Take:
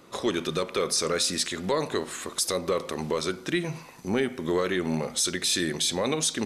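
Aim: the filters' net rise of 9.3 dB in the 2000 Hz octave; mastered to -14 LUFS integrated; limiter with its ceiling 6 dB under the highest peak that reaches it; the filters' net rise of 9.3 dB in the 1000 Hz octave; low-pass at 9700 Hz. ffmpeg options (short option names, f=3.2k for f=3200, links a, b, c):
-af "lowpass=9.7k,equalizer=f=1k:t=o:g=8.5,equalizer=f=2k:t=o:g=8.5,volume=12dB,alimiter=limit=-2dB:level=0:latency=1"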